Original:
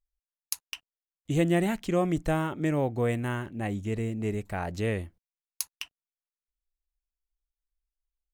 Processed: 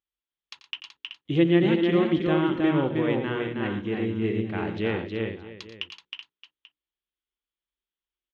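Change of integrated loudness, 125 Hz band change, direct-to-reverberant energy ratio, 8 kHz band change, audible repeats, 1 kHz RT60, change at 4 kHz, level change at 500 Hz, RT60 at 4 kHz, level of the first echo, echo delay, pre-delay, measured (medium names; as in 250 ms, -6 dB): +4.5 dB, +0.5 dB, no reverb, under -20 dB, 5, no reverb, +7.0 dB, +4.5 dB, no reverb, -13.5 dB, 88 ms, no reverb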